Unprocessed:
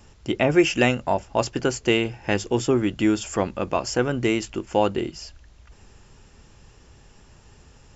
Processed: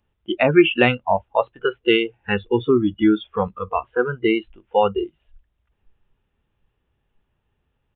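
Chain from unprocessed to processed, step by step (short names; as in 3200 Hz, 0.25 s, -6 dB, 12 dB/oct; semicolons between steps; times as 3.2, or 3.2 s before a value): downsampling 8000 Hz; spectral noise reduction 25 dB; gain +4.5 dB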